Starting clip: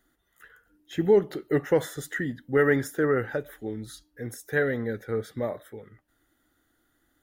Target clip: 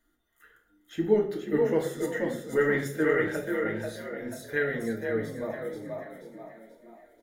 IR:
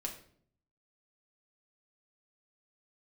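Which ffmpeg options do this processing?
-filter_complex "[0:a]asplit=6[link_01][link_02][link_03][link_04][link_05][link_06];[link_02]adelay=484,afreqshift=37,volume=-4.5dB[link_07];[link_03]adelay=968,afreqshift=74,volume=-11.8dB[link_08];[link_04]adelay=1452,afreqshift=111,volume=-19.2dB[link_09];[link_05]adelay=1936,afreqshift=148,volume=-26.5dB[link_10];[link_06]adelay=2420,afreqshift=185,volume=-33.8dB[link_11];[link_01][link_07][link_08][link_09][link_10][link_11]amix=inputs=6:normalize=0[link_12];[1:a]atrim=start_sample=2205,asetrate=48510,aresample=44100[link_13];[link_12][link_13]afir=irnorm=-1:irlink=0,asplit=3[link_14][link_15][link_16];[link_14]afade=type=out:start_time=2.72:duration=0.02[link_17];[link_15]adynamicequalizer=threshold=0.00501:dfrequency=2600:dqfactor=1.1:tfrequency=2600:tqfactor=1.1:attack=5:release=100:ratio=0.375:range=3.5:mode=boostabove:tftype=bell,afade=type=in:start_time=2.72:duration=0.02,afade=type=out:start_time=4.93:duration=0.02[link_18];[link_16]afade=type=in:start_time=4.93:duration=0.02[link_19];[link_17][link_18][link_19]amix=inputs=3:normalize=0,volume=-3dB"

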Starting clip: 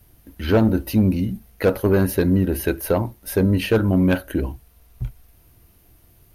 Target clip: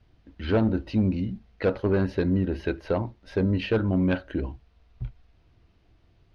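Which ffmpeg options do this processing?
ffmpeg -i in.wav -af "lowpass=frequency=4600:width=0.5412,lowpass=frequency=4600:width=1.3066,volume=-6dB" out.wav

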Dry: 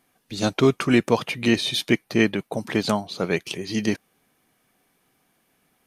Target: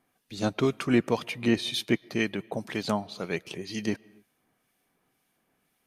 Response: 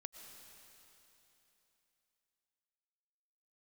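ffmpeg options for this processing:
-filter_complex "[0:a]acrossover=split=1900[link_01][link_02];[link_01]aeval=exprs='val(0)*(1-0.5/2+0.5/2*cos(2*PI*2*n/s))':channel_layout=same[link_03];[link_02]aeval=exprs='val(0)*(1-0.5/2-0.5/2*cos(2*PI*2*n/s))':channel_layout=same[link_04];[link_03][link_04]amix=inputs=2:normalize=0,asplit=2[link_05][link_06];[1:a]atrim=start_sample=2205,afade=type=out:start_time=0.34:duration=0.01,atrim=end_sample=15435,lowpass=3600[link_07];[link_06][link_07]afir=irnorm=-1:irlink=0,volume=-11dB[link_08];[link_05][link_08]amix=inputs=2:normalize=0,volume=-5dB"

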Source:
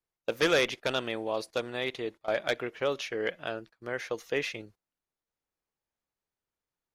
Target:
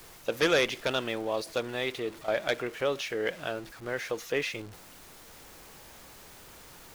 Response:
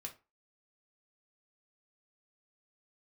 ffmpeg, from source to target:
-af "aeval=exprs='val(0)+0.5*0.00794*sgn(val(0))':channel_layout=same"

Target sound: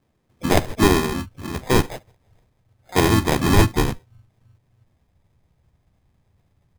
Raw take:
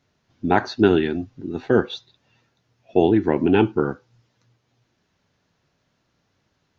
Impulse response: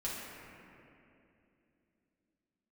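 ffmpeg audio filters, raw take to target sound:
-filter_complex "[0:a]acrusher=samples=31:mix=1:aa=0.000001,asplit=3[link_01][link_02][link_03];[link_02]asetrate=35002,aresample=44100,atempo=1.25992,volume=-4dB[link_04];[link_03]asetrate=88200,aresample=44100,atempo=0.5,volume=-17dB[link_05];[link_01][link_04][link_05]amix=inputs=3:normalize=0,asubboost=boost=5.5:cutoff=120,volume=-1dB"

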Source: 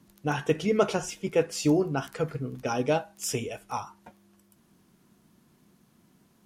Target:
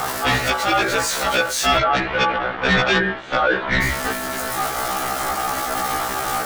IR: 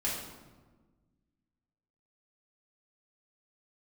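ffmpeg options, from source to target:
-filter_complex "[0:a]aeval=exprs='val(0)+0.5*0.0335*sgn(val(0))':channel_layout=same,asettb=1/sr,asplit=3[link_01][link_02][link_03];[link_01]atrim=end=1.774[link_04];[link_02]atrim=start=1.77:end=3.82,asetpts=PTS-STARTPTS,afade=type=in:duration=0.004:curve=qsin,afade=type=out:start_time=2.046:duration=0.004:curve=qsin,lowpass=frequency=2300:width=0.5412,lowpass=frequency=2300:width=1.3066[link_05];[link_03]atrim=start=3.816[link_06];[link_04][link_05]acrossfade=duration=0.004:curve1=hsin:curve2=qsin[link_07];[link_07][link_06]acrossfade=duration=0.004:curve1=qsin:curve2=hsin,equalizer=frequency=570:width=0.71:gain=4.5,bandreject=frequency=1600:width=8,alimiter=limit=-13.5dB:level=0:latency=1:release=469,aeval=exprs='val(0)*sin(2*PI*1000*n/s)':channel_layout=same,aeval=exprs='0.211*sin(PI/2*3.16*val(0)/0.211)':channel_layout=same,afftfilt=real='re*1.73*eq(mod(b,3),0)':imag='im*1.73*eq(mod(b,3),0)':win_size=2048:overlap=0.75,volume=2.5dB"

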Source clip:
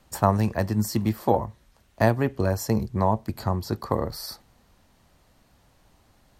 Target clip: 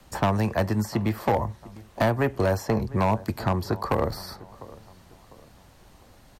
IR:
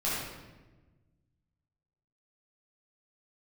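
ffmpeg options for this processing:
-filter_complex "[0:a]acrossover=split=120|430|2600|5300[link_01][link_02][link_03][link_04][link_05];[link_01]acompressor=threshold=-37dB:ratio=4[link_06];[link_02]acompressor=threshold=-34dB:ratio=4[link_07];[link_03]acompressor=threshold=-25dB:ratio=4[link_08];[link_04]acompressor=threshold=-55dB:ratio=4[link_09];[link_05]acompressor=threshold=-54dB:ratio=4[link_10];[link_06][link_07][link_08][link_09][link_10]amix=inputs=5:normalize=0,asplit=2[link_11][link_12];[link_12]adelay=701,lowpass=frequency=2000:poles=1,volume=-20.5dB,asplit=2[link_13][link_14];[link_14]adelay=701,lowpass=frequency=2000:poles=1,volume=0.39,asplit=2[link_15][link_16];[link_16]adelay=701,lowpass=frequency=2000:poles=1,volume=0.39[link_17];[link_11][link_13][link_15][link_17]amix=inputs=4:normalize=0,volume=22.5dB,asoftclip=hard,volume=-22.5dB,volume=6.5dB"

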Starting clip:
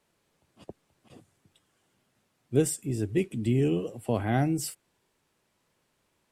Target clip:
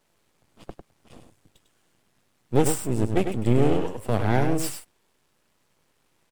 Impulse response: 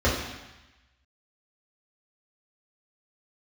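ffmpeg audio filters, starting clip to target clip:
-af "aeval=exprs='max(val(0),0)':channel_layout=same,aecho=1:1:100:0.447,volume=7.5dB"

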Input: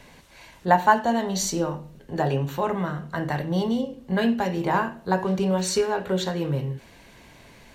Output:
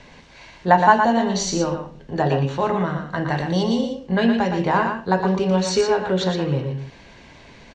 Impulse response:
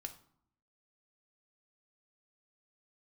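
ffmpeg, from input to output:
-filter_complex "[0:a]lowpass=frequency=6300:width=0.5412,lowpass=frequency=6300:width=1.3066,asettb=1/sr,asplit=3[link_01][link_02][link_03];[link_01]atrim=end=3.374[link_04];[link_02]atrim=start=3.37:end=3.95,asetpts=PTS-STARTPTS,afade=type=in:duration=0.004:curve=qsin,afade=type=out:start_time=0.576:duration=0.004:curve=qsin,bass=frequency=250:gain=-1,treble=frequency=4000:gain=10[link_05];[link_03]atrim=start=3.946[link_06];[link_04][link_05]acrossfade=duration=0.004:curve1=hsin:curve2=qsin[link_07];[link_07][link_06]acrossfade=duration=0.004:curve1=qsin:curve2=hsin,aecho=1:1:117:0.501,volume=3.5dB"

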